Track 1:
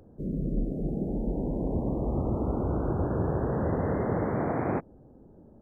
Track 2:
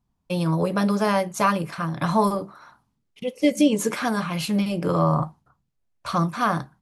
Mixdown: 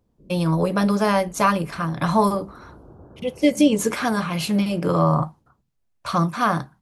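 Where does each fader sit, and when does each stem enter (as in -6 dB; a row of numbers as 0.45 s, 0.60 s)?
-17.5 dB, +2.0 dB; 0.00 s, 0.00 s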